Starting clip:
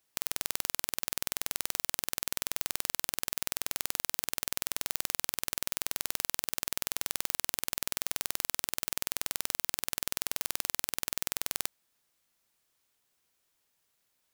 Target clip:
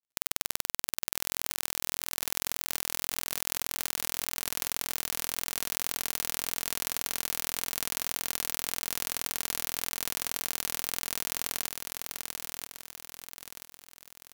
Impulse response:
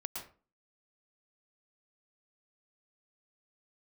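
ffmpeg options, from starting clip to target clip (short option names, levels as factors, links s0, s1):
-af "acrusher=bits=10:mix=0:aa=0.000001,aecho=1:1:983|1966|2949|3932|4915|5898:0.596|0.274|0.126|0.058|0.0267|0.0123"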